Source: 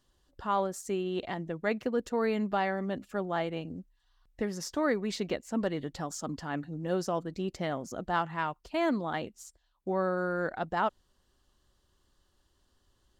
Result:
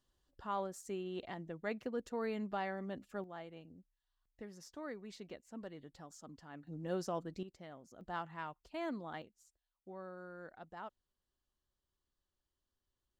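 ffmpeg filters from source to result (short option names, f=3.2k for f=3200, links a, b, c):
-af "asetnsamples=n=441:p=0,asendcmd='3.24 volume volume -17dB;6.67 volume volume -7.5dB;7.43 volume volume -19dB;8.01 volume volume -12dB;9.22 volume volume -19dB',volume=-9.5dB"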